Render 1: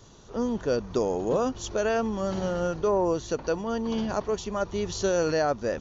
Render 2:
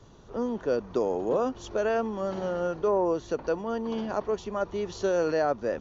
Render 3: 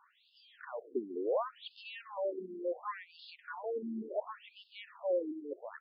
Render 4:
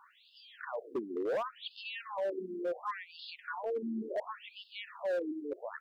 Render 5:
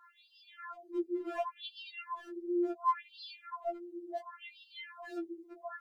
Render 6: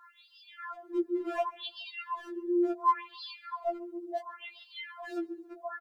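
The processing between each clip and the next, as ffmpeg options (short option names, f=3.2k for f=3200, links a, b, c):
-filter_complex "[0:a]lowpass=f=2k:p=1,acrossover=split=220[a][b];[a]acompressor=threshold=-45dB:ratio=6[c];[c][b]amix=inputs=2:normalize=0"
-af "lowshelf=f=330:g=-8.5,asoftclip=type=tanh:threshold=-24.5dB,afftfilt=real='re*between(b*sr/1024,270*pow(3800/270,0.5+0.5*sin(2*PI*0.7*pts/sr))/1.41,270*pow(3800/270,0.5+0.5*sin(2*PI*0.7*pts/sr))*1.41)':imag='im*between(b*sr/1024,270*pow(3800/270,0.5+0.5*sin(2*PI*0.7*pts/sr))/1.41,270*pow(3800/270,0.5+0.5*sin(2*PI*0.7*pts/sr))*1.41)':win_size=1024:overlap=0.75,volume=1dB"
-filter_complex "[0:a]asplit=2[a][b];[b]acompressor=threshold=-45dB:ratio=12,volume=0dB[c];[a][c]amix=inputs=2:normalize=0,volume=29.5dB,asoftclip=hard,volume=-29.5dB"
-af "afftfilt=real='re*4*eq(mod(b,16),0)':imag='im*4*eq(mod(b,16),0)':win_size=2048:overlap=0.75,volume=1dB"
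-af "aecho=1:1:139|278|417:0.0631|0.0309|0.0151,volume=4.5dB"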